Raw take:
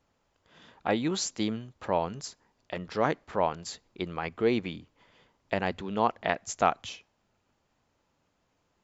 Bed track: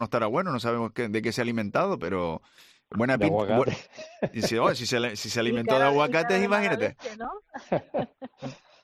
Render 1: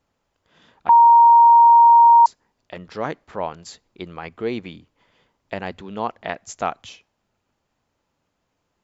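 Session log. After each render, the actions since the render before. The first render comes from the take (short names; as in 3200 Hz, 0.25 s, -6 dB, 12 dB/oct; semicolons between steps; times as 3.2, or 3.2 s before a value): 0.89–2.26 bleep 935 Hz -7 dBFS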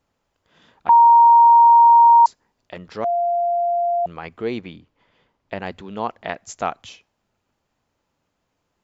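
3.04–4.06 bleep 694 Hz -17 dBFS; 4.61–5.62 air absorption 87 m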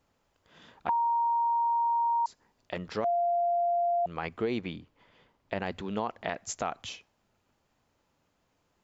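limiter -16 dBFS, peak gain reduction 9 dB; compressor, threshold -26 dBFS, peak gain reduction 7.5 dB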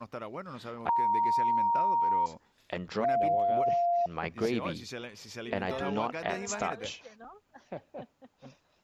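add bed track -14.5 dB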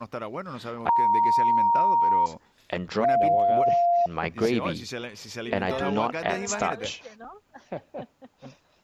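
gain +6 dB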